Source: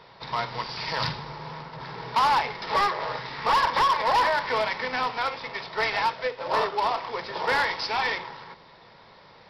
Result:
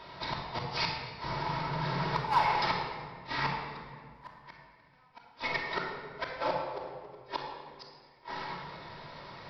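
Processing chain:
dynamic equaliser 910 Hz, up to +5 dB, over −37 dBFS, Q 2.2
downward compressor 10 to 1, threshold −24 dBFS, peak gain reduction 10 dB
gate with flip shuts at −21 dBFS, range −41 dB
rectangular room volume 2,600 cubic metres, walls mixed, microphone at 2.8 metres

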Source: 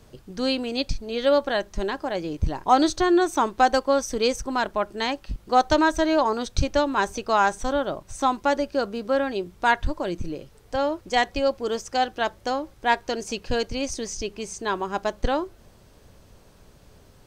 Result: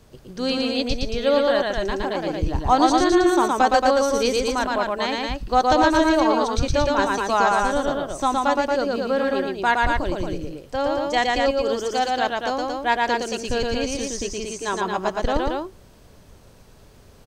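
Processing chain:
loudspeakers that aren't time-aligned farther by 40 metres −2 dB, 78 metres −4 dB

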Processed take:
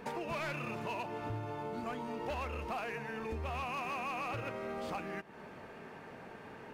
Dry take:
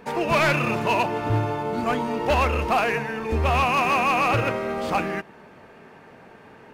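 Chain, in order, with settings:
downward compressor 5 to 1, threshold −36 dBFS, peak gain reduction 16 dB
level −2.5 dB

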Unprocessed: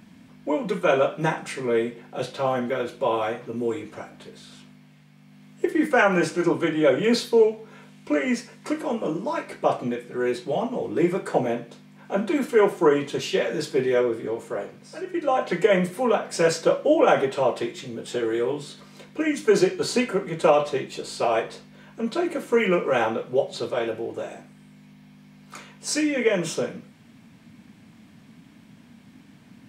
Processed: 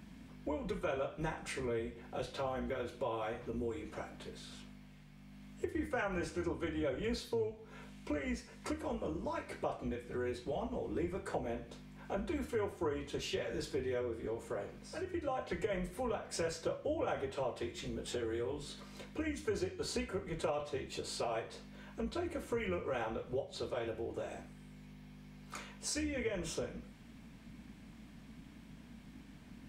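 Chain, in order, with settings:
sub-octave generator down 2 octaves, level −5 dB
downward compressor 3 to 1, threshold −33 dBFS, peak gain reduction 15 dB
level −5 dB

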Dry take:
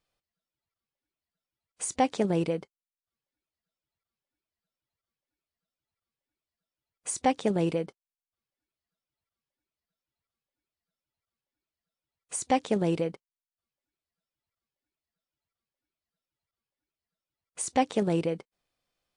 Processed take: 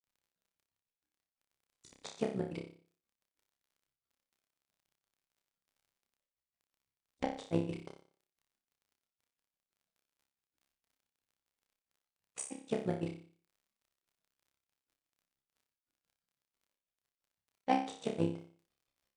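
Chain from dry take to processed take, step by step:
amplitude modulation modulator 64 Hz, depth 70%
granular cloud 105 ms, grains 6 per second, pitch spread up and down by 0 semitones
in parallel at −4.5 dB: soft clipping −29.5 dBFS, distortion −8 dB
on the sum: surface crackle 16 per second −57 dBFS
flutter between parallel walls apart 5.1 metres, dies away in 0.44 s
on a send at −19 dB: convolution reverb RT60 0.50 s, pre-delay 5 ms
on the sum: level −3.5 dB

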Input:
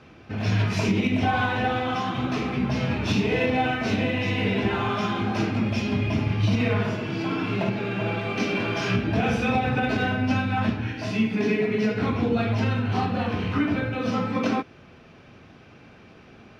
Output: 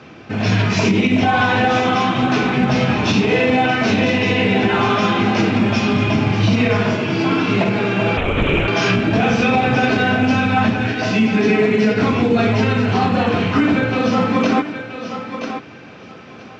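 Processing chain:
high-pass filter 120 Hz 12 dB per octave
feedback echo with a high-pass in the loop 976 ms, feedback 17%, high-pass 300 Hz, level −9 dB
0:08.17–0:08.68: linear-prediction vocoder at 8 kHz whisper
boost into a limiter +15.5 dB
level −5.5 dB
mu-law 128 kbit/s 16,000 Hz

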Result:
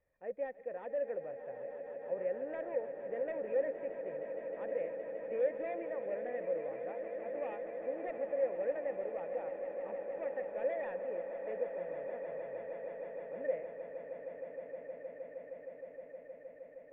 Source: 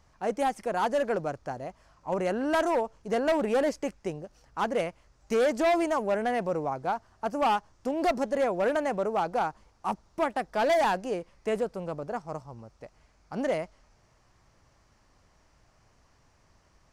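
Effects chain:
formant resonators in series e
echo that builds up and dies away 156 ms, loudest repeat 8, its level −13 dB
level −3.5 dB

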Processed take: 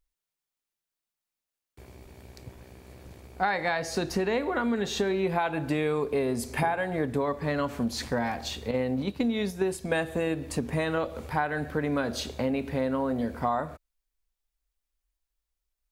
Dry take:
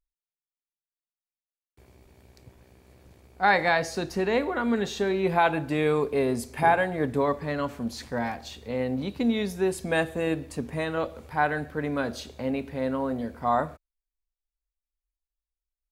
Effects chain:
0:08.71–0:10.01: noise gate −30 dBFS, range −7 dB
downward compressor 6 to 1, threshold −31 dBFS, peak gain reduction 14.5 dB
level +6.5 dB

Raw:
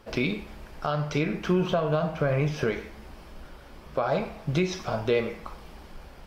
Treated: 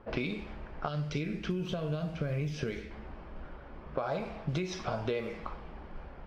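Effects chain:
low-pass that shuts in the quiet parts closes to 1,500 Hz, open at −21 dBFS
0:00.88–0:02.91: parametric band 930 Hz −12.5 dB 1.8 octaves
downward compressor 6 to 1, threshold −30 dBFS, peak gain reduction 10.5 dB

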